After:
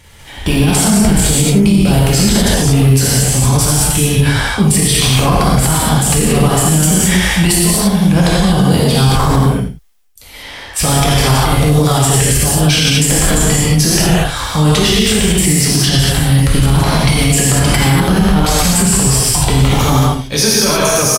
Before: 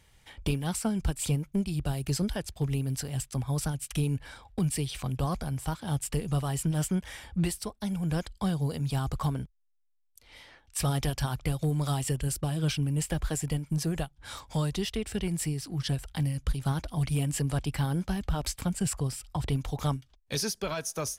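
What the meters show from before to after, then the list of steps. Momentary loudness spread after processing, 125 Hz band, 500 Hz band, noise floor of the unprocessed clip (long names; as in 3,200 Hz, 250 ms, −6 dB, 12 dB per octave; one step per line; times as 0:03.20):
3 LU, +17.5 dB, +20.5 dB, −66 dBFS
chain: transient designer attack −3 dB, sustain +10 dB
on a send: single-tap delay 83 ms −11.5 dB
on the sum: reverb whose tail is shaped and stops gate 260 ms flat, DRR −6.5 dB
boost into a limiter +16 dB
level −1 dB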